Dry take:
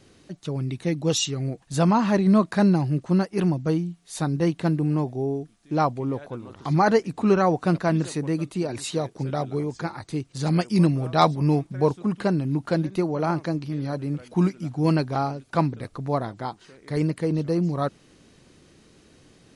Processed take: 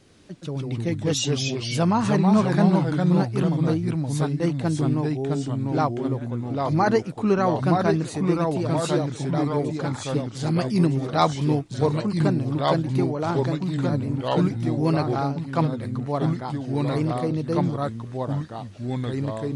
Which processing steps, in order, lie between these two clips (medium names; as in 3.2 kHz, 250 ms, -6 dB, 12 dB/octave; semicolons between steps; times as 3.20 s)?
ever faster or slower copies 90 ms, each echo -2 st, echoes 2; trim -1.5 dB